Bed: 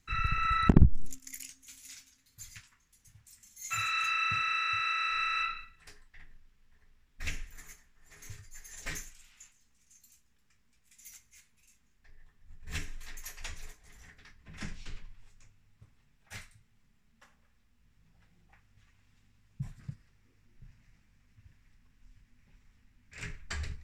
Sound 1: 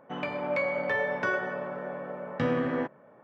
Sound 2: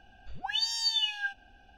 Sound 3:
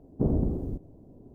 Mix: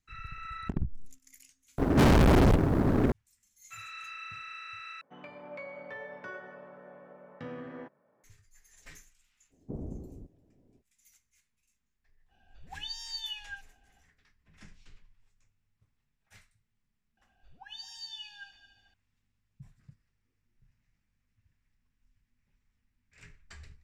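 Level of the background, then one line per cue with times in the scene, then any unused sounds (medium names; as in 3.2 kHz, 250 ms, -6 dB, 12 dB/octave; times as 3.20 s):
bed -12.5 dB
1.78 s: replace with 3 -5.5 dB + fuzz box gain 49 dB, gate -58 dBFS
5.01 s: replace with 1 -14.5 dB
9.49 s: add 3 -14 dB, fades 0.05 s
12.28 s: add 2 -10 dB, fades 0.05 s
17.17 s: add 2 -15.5 dB + multi-head delay 73 ms, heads first and third, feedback 55%, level -15 dB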